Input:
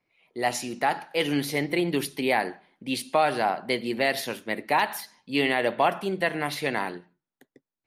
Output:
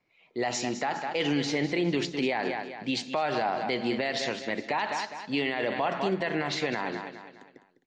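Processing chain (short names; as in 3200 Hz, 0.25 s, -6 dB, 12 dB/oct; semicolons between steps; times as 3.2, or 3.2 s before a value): feedback echo 0.204 s, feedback 40%, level -12.5 dB; limiter -20 dBFS, peak gain reduction 11 dB; steep low-pass 7500 Hz 72 dB/oct; gain +2 dB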